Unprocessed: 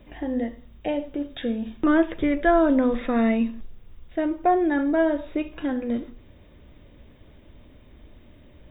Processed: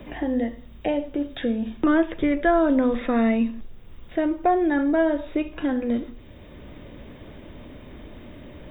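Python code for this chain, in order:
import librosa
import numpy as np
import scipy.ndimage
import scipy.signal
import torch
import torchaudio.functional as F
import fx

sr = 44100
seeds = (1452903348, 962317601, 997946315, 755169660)

y = fx.band_squash(x, sr, depth_pct=40)
y = F.gain(torch.from_numpy(y), 1.0).numpy()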